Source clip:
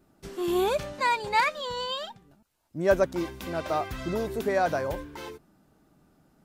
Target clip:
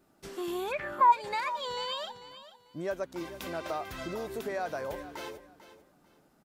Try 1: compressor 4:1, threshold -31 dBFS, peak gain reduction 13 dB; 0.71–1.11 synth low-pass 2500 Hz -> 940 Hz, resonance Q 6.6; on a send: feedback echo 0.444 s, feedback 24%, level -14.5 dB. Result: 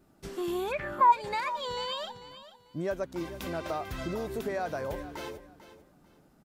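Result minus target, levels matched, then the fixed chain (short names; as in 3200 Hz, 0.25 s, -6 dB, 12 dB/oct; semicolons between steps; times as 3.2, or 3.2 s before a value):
250 Hz band +2.5 dB
compressor 4:1, threshold -31 dBFS, peak gain reduction 13 dB; low shelf 220 Hz -9.5 dB; 0.71–1.11 synth low-pass 2500 Hz -> 940 Hz, resonance Q 6.6; on a send: feedback echo 0.444 s, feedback 24%, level -14.5 dB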